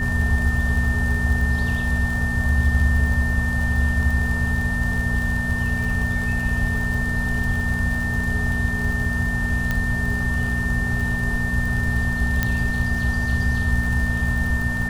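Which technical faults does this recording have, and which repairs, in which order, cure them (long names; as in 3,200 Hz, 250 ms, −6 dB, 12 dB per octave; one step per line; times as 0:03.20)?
surface crackle 40 per second −26 dBFS
mains hum 60 Hz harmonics 4 −27 dBFS
whistle 1,800 Hz −25 dBFS
0:09.71: click −10 dBFS
0:12.43: click −6 dBFS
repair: click removal
hum removal 60 Hz, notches 4
notch filter 1,800 Hz, Q 30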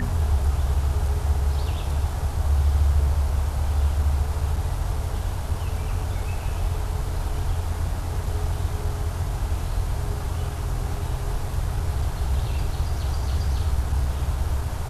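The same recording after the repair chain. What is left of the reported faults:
none of them is left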